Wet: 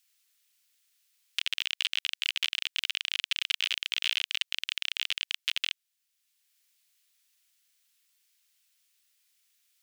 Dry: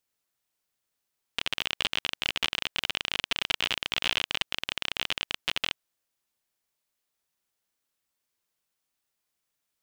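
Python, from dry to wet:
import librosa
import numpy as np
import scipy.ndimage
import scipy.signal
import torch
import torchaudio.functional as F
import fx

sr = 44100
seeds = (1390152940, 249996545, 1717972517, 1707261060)

y = scipy.signal.sosfilt(scipy.signal.cheby1(2, 1.0, 2500.0, 'highpass', fs=sr, output='sos'), x)
y = fx.band_squash(y, sr, depth_pct=40)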